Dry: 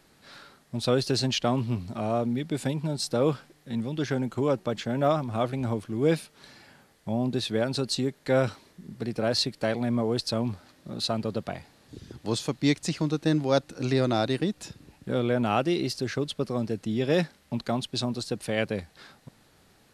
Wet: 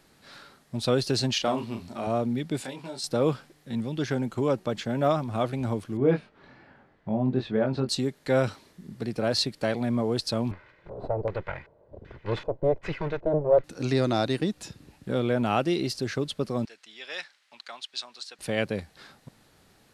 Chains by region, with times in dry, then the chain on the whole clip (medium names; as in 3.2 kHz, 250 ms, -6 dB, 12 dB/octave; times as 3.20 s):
1.33–2.07 s: peaking EQ 110 Hz -13 dB 1.4 oct + doubling 35 ms -6 dB
2.62–3.04 s: frequency weighting A + compression 3:1, threshold -34 dBFS + doubling 23 ms -4.5 dB
5.97–7.89 s: low-pass 1.8 kHz + doubling 23 ms -5 dB
10.51–13.64 s: comb filter that takes the minimum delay 2 ms + LFO low-pass square 1.3 Hz 660–2100 Hz
16.65–18.39 s: high-pass 1.5 kHz + distance through air 67 m
whole clip: none